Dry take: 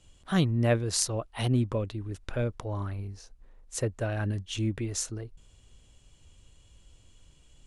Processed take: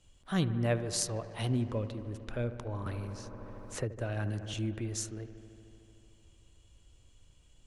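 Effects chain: feedback echo behind a low-pass 75 ms, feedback 84%, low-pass 2 kHz, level -14 dB; 2.86–4.54 s: three bands compressed up and down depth 70%; trim -5 dB

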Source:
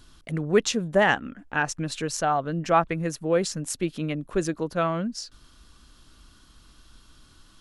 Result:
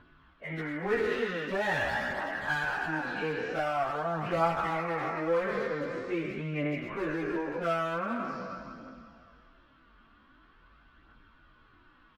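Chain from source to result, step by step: spectral sustain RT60 1.55 s; low-pass 2.1 kHz 24 dB/octave; tilt EQ +2.5 dB/octave; delay 252 ms -22.5 dB; compression 2.5:1, threshold -25 dBFS, peak gain reduction 9 dB; one-sided clip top -25.5 dBFS, bottom -15 dBFS; plain phase-vocoder stretch 1.6×; phaser 0.45 Hz, delay 4.8 ms, feedback 31%

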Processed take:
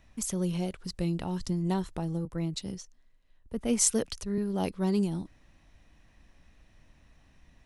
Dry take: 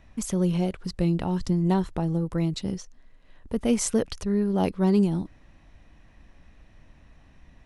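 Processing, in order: treble shelf 3.6 kHz +9 dB; 2.25–4.38 s: three bands expanded up and down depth 40%; trim -6.5 dB

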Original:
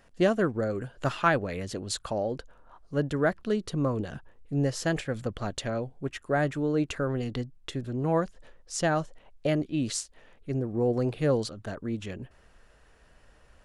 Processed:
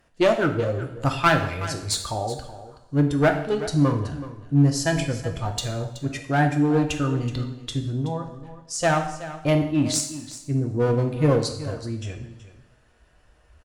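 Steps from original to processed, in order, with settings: spectral noise reduction 10 dB; 8.01–8.81 s: compression 5:1, threshold -36 dBFS, peak gain reduction 12.5 dB; one-sided clip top -26.5 dBFS; delay 375 ms -14.5 dB; two-slope reverb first 0.71 s, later 2.5 s, from -24 dB, DRR 4 dB; trim +7.5 dB

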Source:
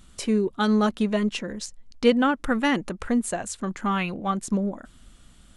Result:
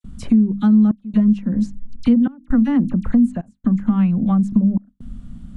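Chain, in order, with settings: resonant low shelf 300 Hz +9 dB, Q 3; hum notches 50/100/150/200/250/300 Hz; phase dispersion lows, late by 42 ms, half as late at 2.2 kHz; trance gate "xxxx.xxxxx." 66 bpm -24 dB; gate with hold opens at -38 dBFS; tilt shelf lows +8.5 dB, about 1.4 kHz; compression 3:1, threshold -16 dBFS, peak gain reduction 15 dB

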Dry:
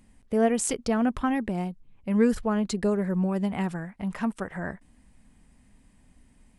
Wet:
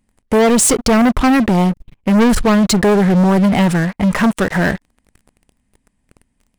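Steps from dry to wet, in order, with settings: waveshaping leveller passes 5; trim +2.5 dB

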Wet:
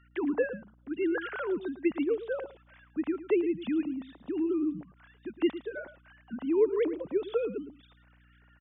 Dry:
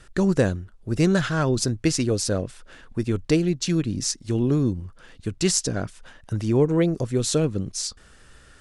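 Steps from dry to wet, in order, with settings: formants replaced by sine waves; delay 110 ms -14 dB; hum 60 Hz, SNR 30 dB; trim -8 dB

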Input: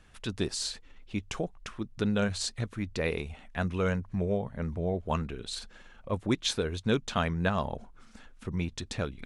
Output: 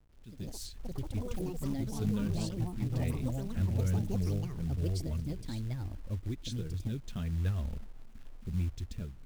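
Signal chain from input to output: local Wiener filter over 9 samples; amplifier tone stack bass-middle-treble 10-0-1; level rider gain up to 13.5 dB; flange 0.8 Hz, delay 2.1 ms, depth 6.2 ms, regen -36%; ever faster or slower copies 123 ms, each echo +5 st, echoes 3; companded quantiser 6-bit; 5.03–7.33 s: compression, threshold -34 dBFS, peak gain reduction 6 dB; peaking EQ 90 Hz +4 dB 1.8 oct

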